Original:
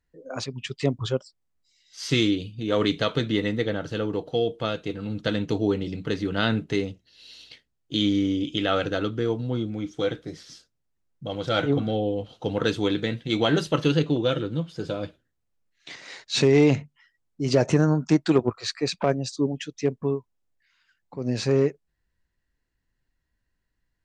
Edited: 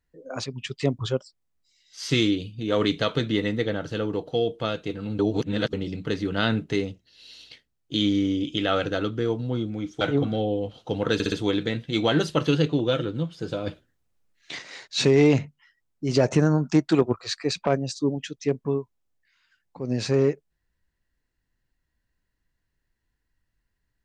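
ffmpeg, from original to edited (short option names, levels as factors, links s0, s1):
-filter_complex "[0:a]asplit=9[s0][s1][s2][s3][s4][s5][s6][s7][s8];[s0]atrim=end=5.192[s9];[s1]atrim=start=5.188:end=5.732,asetpts=PTS-STARTPTS,areverse[s10];[s2]atrim=start=5.728:end=10.012[s11];[s3]atrim=start=11.558:end=12.752[s12];[s4]atrim=start=12.688:end=12.752[s13];[s5]atrim=start=12.688:end=12.752[s14];[s6]atrim=start=12.688:end=15.042[s15];[s7]atrim=start=15.038:end=15.992,asetpts=PTS-STARTPTS,volume=1.78[s16];[s8]atrim=start=15.988[s17];[s9][s10]acrossfade=d=0.004:c1=hsin:c2=hsin[s18];[s18][s11]acrossfade=d=0.004:c1=hsin:c2=hsin[s19];[s19][s12]acrossfade=d=0.004:c1=hsin:c2=hsin[s20];[s20][s13]acrossfade=d=0.004:c1=hsin:c2=hsin[s21];[s21][s14]acrossfade=d=0.004:c1=hsin:c2=hsin[s22];[s22][s15]acrossfade=d=0.004:c1=hsin:c2=hsin[s23];[s23][s16]acrossfade=d=0.004:c1=hsin:c2=hsin[s24];[s24][s17]acrossfade=d=0.004:c1=hsin:c2=hsin"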